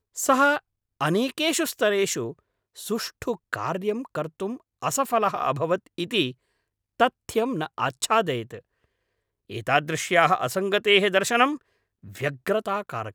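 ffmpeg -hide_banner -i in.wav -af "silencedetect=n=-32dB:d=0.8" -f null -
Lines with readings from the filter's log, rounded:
silence_start: 8.57
silence_end: 9.51 | silence_duration: 0.94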